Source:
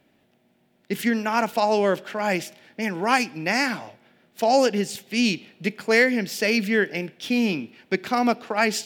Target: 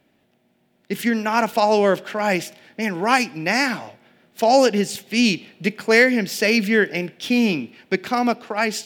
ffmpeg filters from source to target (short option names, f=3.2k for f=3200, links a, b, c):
-af "dynaudnorm=f=220:g=11:m=6dB"